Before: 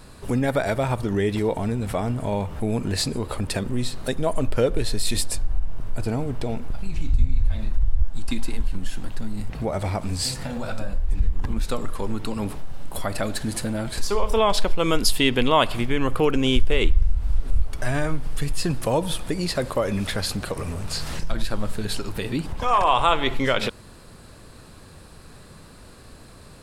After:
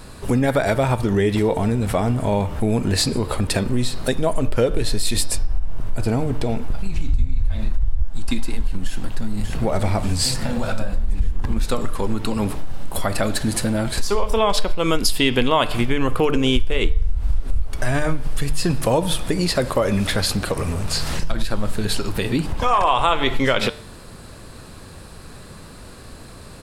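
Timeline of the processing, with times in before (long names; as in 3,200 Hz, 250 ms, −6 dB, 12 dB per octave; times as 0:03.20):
0:08.84–0:09.51: delay throw 590 ms, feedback 65%, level −5 dB
whole clip: hum removal 148.7 Hz, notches 39; downward compressor 3 to 1, threshold −20 dBFS; level +6 dB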